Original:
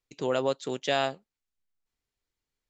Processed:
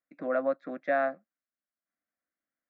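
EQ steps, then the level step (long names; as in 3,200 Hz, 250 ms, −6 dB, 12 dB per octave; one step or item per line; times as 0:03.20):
loudspeaker in its box 220–2,200 Hz, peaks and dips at 240 Hz −3 dB, 450 Hz −7 dB, 1,200 Hz −3 dB
phaser with its sweep stopped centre 600 Hz, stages 8
+3.5 dB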